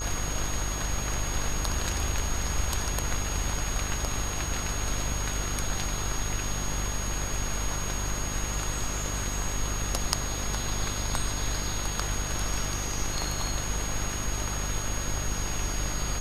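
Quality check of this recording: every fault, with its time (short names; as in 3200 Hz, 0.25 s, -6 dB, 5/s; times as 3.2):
buzz 50 Hz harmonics 33 -34 dBFS
tone 6600 Hz -35 dBFS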